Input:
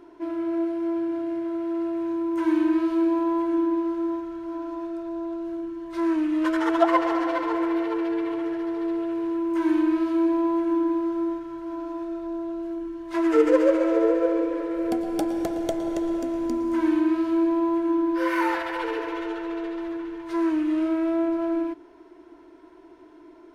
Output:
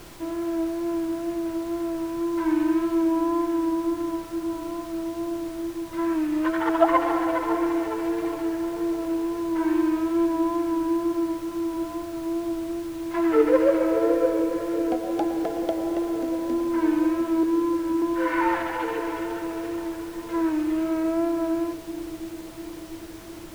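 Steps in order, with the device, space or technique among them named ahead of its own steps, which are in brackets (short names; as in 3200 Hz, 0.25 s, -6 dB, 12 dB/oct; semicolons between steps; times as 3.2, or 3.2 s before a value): 17.43–18.02 Chebyshev band-stop 390–1100 Hz, order 2; horn gramophone (BPF 230–3000 Hz; bell 810 Hz +6 dB 0.24 oct; wow and flutter 25 cents; pink noise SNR 20 dB); dark delay 0.7 s, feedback 66%, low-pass 440 Hz, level -10 dB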